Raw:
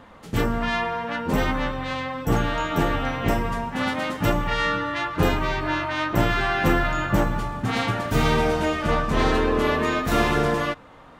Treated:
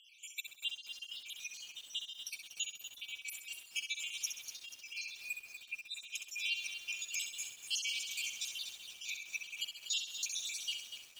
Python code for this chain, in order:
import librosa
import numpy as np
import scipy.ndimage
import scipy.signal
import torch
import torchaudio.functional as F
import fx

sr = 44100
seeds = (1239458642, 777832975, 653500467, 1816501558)

y = fx.spec_dropout(x, sr, seeds[0], share_pct=72)
y = fx.peak_eq(y, sr, hz=6700.0, db=9.5, octaves=0.45)
y = fx.over_compress(y, sr, threshold_db=-37.0, ratio=-1.0)
y = fx.brickwall_highpass(y, sr, low_hz=2200.0)
y = fx.room_flutter(y, sr, wall_m=11.2, rt60_s=0.55)
y = fx.echo_crushed(y, sr, ms=242, feedback_pct=55, bits=8, wet_db=-8.5)
y = y * librosa.db_to_amplitude(-3.5)